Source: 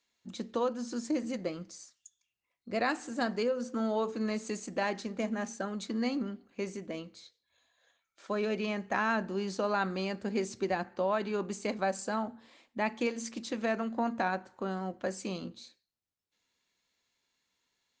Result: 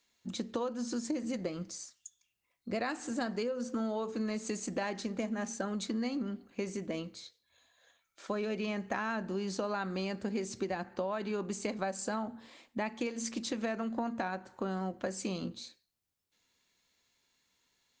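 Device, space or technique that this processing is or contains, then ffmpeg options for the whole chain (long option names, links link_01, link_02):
ASMR close-microphone chain: -af "lowshelf=frequency=190:gain=4,acompressor=threshold=-35dB:ratio=5,highshelf=frequency=7100:gain=4.5,volume=3dB"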